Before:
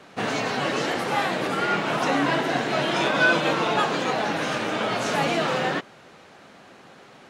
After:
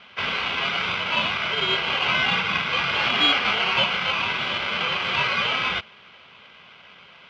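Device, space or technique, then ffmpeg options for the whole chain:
ring modulator pedal into a guitar cabinet: -af "aeval=exprs='val(0)*sgn(sin(2*PI*1800*n/s))':c=same,highpass=84,equalizer=f=180:t=q:w=4:g=4,equalizer=f=300:t=q:w=4:g=-9,equalizer=f=3000:t=q:w=4:g=7,lowpass=f=3700:w=0.5412,lowpass=f=3700:w=1.3066"

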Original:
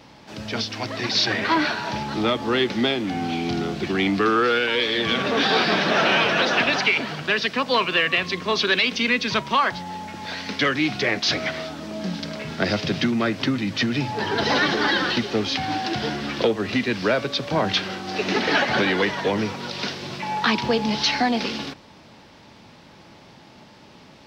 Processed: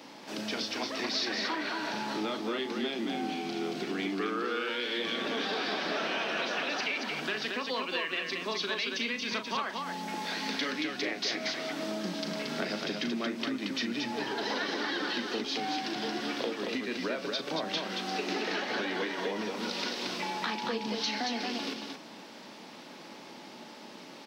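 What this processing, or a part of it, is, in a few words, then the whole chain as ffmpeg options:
ASMR close-microphone chain: -af "highpass=f=230:w=0.5412,highpass=f=230:w=1.3066,lowshelf=f=180:g=7.5,acompressor=threshold=0.0251:ratio=5,highshelf=f=7000:g=6.5,aecho=1:1:37.9|227.4:0.355|0.631,volume=0.841"

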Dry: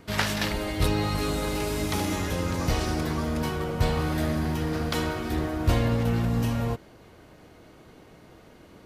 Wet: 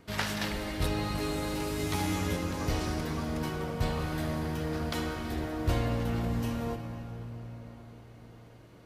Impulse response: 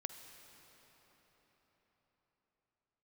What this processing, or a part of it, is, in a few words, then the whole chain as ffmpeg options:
cathedral: -filter_complex "[0:a]asettb=1/sr,asplit=3[s0][s1][s2];[s0]atrim=end=1.784[s3];[s1]atrim=start=1.78:end=2.37,asetpts=PTS-STARTPTS,afade=t=in:d=0.004:c=qsin,afade=t=out:st=0.586:d=0.004:c=qsin,asplit=2[s4][s5];[s5]adelay=12,volume=0.708[s6];[s4][s6]amix=inputs=2:normalize=0,atrim=end_sample=26019[s7];[s2]atrim=start=2.366[s8];[s3][s7]acrossfade=d=0.004:c1=hsin:c2=qsin[s9];[s9][s8]acrossfade=d=0.004:c1=qsin:c2=hsin[s10];[1:a]atrim=start_sample=2205[s11];[s10][s11]afir=irnorm=-1:irlink=0,volume=0.708"

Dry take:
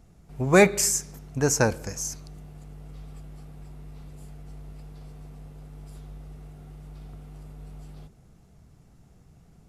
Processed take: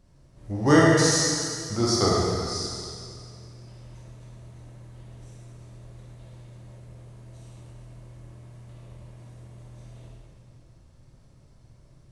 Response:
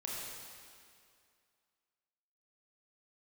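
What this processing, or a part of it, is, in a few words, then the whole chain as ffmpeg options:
slowed and reverbed: -filter_complex "[0:a]asetrate=35280,aresample=44100[s0];[1:a]atrim=start_sample=2205[s1];[s0][s1]afir=irnorm=-1:irlink=0"

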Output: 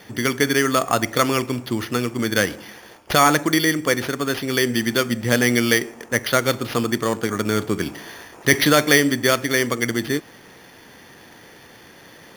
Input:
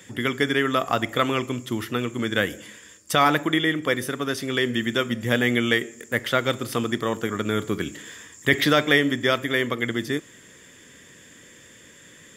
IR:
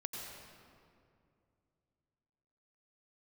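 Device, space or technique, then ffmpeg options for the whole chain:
crushed at another speed: -af "asetrate=35280,aresample=44100,acrusher=samples=7:mix=1:aa=0.000001,asetrate=55125,aresample=44100,volume=1.5"

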